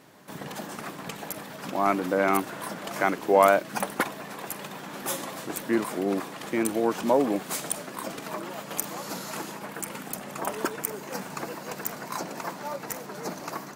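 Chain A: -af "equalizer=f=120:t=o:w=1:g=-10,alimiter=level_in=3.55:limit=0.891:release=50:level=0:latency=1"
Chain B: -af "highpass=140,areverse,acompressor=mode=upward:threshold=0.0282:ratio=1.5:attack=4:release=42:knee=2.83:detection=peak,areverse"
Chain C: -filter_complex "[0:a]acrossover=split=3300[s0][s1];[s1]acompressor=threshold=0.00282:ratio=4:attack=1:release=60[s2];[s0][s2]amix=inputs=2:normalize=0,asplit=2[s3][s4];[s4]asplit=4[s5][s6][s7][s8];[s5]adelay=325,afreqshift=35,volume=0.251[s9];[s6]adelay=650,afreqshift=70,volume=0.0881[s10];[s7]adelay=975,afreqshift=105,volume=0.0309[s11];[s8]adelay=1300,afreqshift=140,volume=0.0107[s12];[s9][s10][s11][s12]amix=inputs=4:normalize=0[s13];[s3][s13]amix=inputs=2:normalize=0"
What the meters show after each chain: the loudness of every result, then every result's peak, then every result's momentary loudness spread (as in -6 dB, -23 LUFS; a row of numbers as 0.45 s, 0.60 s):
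-20.0 LUFS, -29.0 LUFS, -29.5 LUFS; -1.0 dBFS, -4.5 dBFS, -4.5 dBFS; 12 LU, 12 LU, 14 LU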